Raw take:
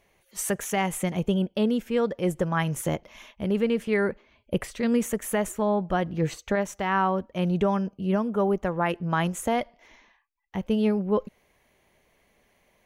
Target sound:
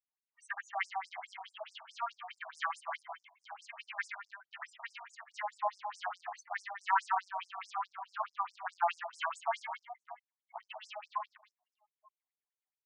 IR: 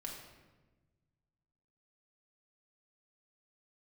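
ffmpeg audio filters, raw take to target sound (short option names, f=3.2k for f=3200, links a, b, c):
-filter_complex "[0:a]asettb=1/sr,asplit=3[a][b][c];[a]atrim=end=2.554[d];[b]atrim=start=2.55:end=2.96,asetpts=PTS-STARTPTS,afade=t=in:d=0.004:c=qsin,afade=t=out:st=0.406:d=0.004:c=qsin,asplit=2[e][f];[f]adelay=27,volume=-4dB[g];[e][g]amix=inputs=2:normalize=0,atrim=end_sample=18081[h];[c]atrim=start=2.956[i];[d][h]acrossfade=d=0.004:c1=hsin:c2=qsin[j];[j][i]acrossfade=d=0.004:c1=qsin:c2=hsin,aecho=1:1:70|175|332.5|568.8|923.1:0.631|0.398|0.251|0.158|0.1,flanger=delay=6.4:depth=4.6:regen=-11:speed=0.41:shape=sinusoidal,acrossover=split=3500[k][l];[l]acompressor=threshold=-49dB:ratio=10[m];[k][m]amix=inputs=2:normalize=0,afftdn=nr=29:nf=-46,asplit=2[n][o];[o]acrusher=bits=4:mix=0:aa=0.5,volume=-11dB[p];[n][p]amix=inputs=2:normalize=0,afftfilt=real='re*between(b*sr/1024,860*pow(7100/860,0.5+0.5*sin(2*PI*4.7*pts/sr))/1.41,860*pow(7100/860,0.5+0.5*sin(2*PI*4.7*pts/sr))*1.41)':imag='im*between(b*sr/1024,860*pow(7100/860,0.5+0.5*sin(2*PI*4.7*pts/sr))/1.41,860*pow(7100/860,0.5+0.5*sin(2*PI*4.7*pts/sr))*1.41)':win_size=1024:overlap=0.75"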